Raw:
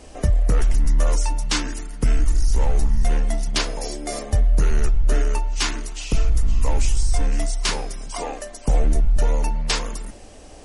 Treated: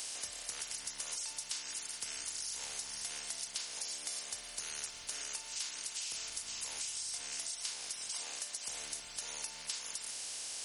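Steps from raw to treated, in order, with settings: per-bin compression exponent 0.4; differentiator; compressor, threshold -29 dBFS, peak gain reduction 9 dB; gain -8 dB

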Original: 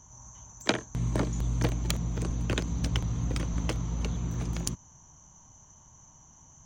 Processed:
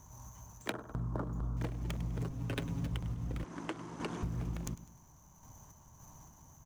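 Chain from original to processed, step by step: median filter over 9 samples; 2.2–2.87 comb 7.3 ms, depth 77%; on a send: feedback echo 0.101 s, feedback 44%, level -18 dB; on the sum: random-step tremolo; 3.44–4.23 speaker cabinet 300–9700 Hz, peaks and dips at 340 Hz +9 dB, 500 Hz -4 dB, 1000 Hz +4 dB, 1600 Hz +6 dB; compressor 5:1, threshold -38 dBFS, peak gain reduction 14.5 dB; 0.72–1.57 resonant high shelf 1700 Hz -9 dB, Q 3; gain +3.5 dB

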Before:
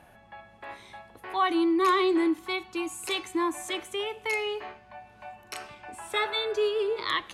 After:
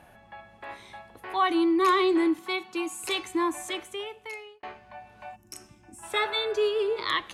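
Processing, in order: 2.39–3.03 HPF 140 Hz 24 dB/oct; 3.54–4.63 fade out linear; 5.36–6.03 spectral gain 380–5000 Hz -16 dB; gain +1 dB

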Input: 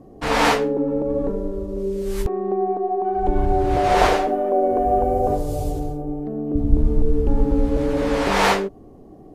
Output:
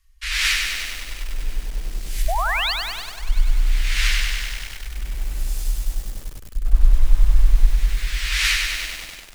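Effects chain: inverse Chebyshev band-stop 130–690 Hz, stop band 60 dB; painted sound rise, 2.28–2.73, 610–4900 Hz -28 dBFS; echo with dull and thin repeats by turns 0.17 s, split 1200 Hz, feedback 69%, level -13.5 dB; lo-fi delay 98 ms, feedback 80%, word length 7-bit, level -4 dB; gain +4 dB

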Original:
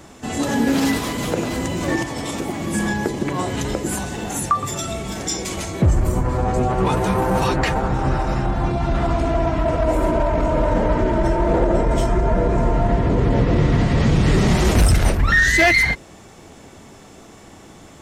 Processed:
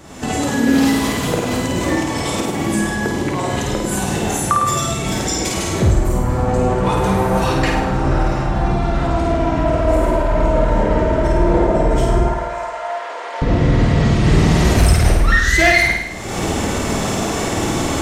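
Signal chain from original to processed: recorder AGC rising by 48 dB/s; 12.28–13.42 HPF 700 Hz 24 dB/oct; on a send: flutter echo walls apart 8.9 m, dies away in 0.86 s

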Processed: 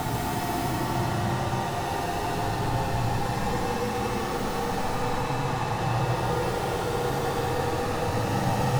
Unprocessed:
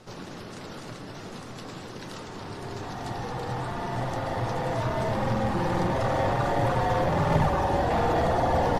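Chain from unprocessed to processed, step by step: tracing distortion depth 0.49 ms; Paulstretch 19×, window 0.10 s, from 3.05; gain +5.5 dB

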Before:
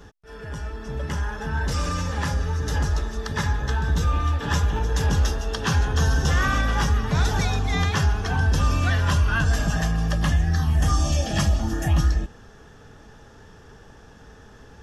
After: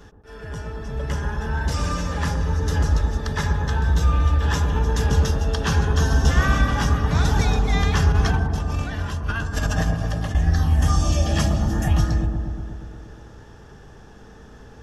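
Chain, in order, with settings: 8.12–10.35 negative-ratio compressor -24 dBFS, ratio -0.5; dark delay 0.119 s, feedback 72%, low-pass 830 Hz, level -3 dB

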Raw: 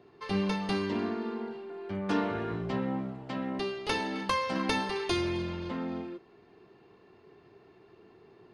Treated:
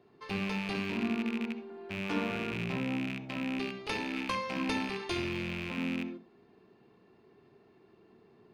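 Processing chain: rattling part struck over -42 dBFS, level -21 dBFS; on a send: reverb RT60 0.20 s, pre-delay 59 ms, DRR 11.5 dB; on the sum: gain -5.5 dB

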